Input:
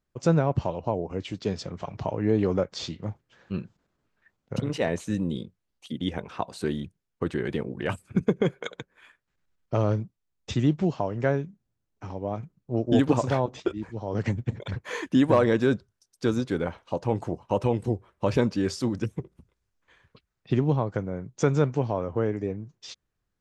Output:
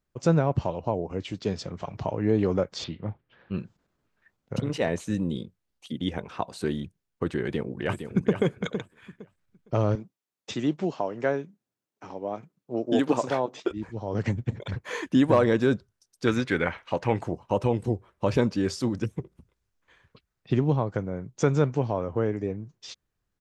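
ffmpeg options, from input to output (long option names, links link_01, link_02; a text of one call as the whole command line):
ffmpeg -i in.wav -filter_complex "[0:a]asettb=1/sr,asplit=3[link_01][link_02][link_03];[link_01]atrim=end=2.844[link_04];[link_02]atrim=start=2.84:end=3.57,asetpts=PTS-STARTPTS,afade=type=in:duration=0.004:curve=qsin,afade=type=out:start_time=0.726:duration=0.004:curve=qsin,lowpass=frequency=3600:width=0.5412,lowpass=frequency=3600:width=1.3066[link_05];[link_03]atrim=start=3.566[link_06];[link_04][link_05]acrossfade=duration=0.004:curve1=hsin:curve2=qsin[link_07];[link_07][link_06]acrossfade=duration=0.004:curve1=qsin:curve2=hsin,asplit=2[link_08][link_09];[link_09]afade=type=in:start_time=7.42:duration=0.01,afade=type=out:start_time=8.34:duration=0.01,aecho=0:1:460|920|1380:0.398107|0.0796214|0.0159243[link_10];[link_08][link_10]amix=inputs=2:normalize=0,asettb=1/sr,asplit=3[link_11][link_12][link_13];[link_11]atrim=end=9.954[link_14];[link_12]atrim=start=9.95:end=13.71,asetpts=PTS-STARTPTS,afade=type=in:duration=0.004:curve=qsin,afade=type=out:start_time=3.756:duration=0.004:curve=qsin,highpass=250[link_15];[link_13]atrim=start=13.706[link_16];[link_14][link_15]acrossfade=duration=0.004:curve1=hsin:curve2=qsin[link_17];[link_17][link_16]acrossfade=duration=0.004:curve1=qsin:curve2=hsin,asettb=1/sr,asplit=3[link_18][link_19][link_20];[link_18]atrim=end=16.274[link_21];[link_19]atrim=start=16.27:end=17.23,asetpts=PTS-STARTPTS,afade=type=in:duration=0.004:curve=qsin,afade=type=out:start_time=0.956:duration=0.004:curve=qsin,equalizer=frequency=2000:width=1.1:gain=14.5[link_22];[link_20]atrim=start=17.226[link_23];[link_21][link_22]acrossfade=duration=0.004:curve1=hsin:curve2=qsin[link_24];[link_24][link_23]acrossfade=duration=0.004:curve1=qsin:curve2=hsin" out.wav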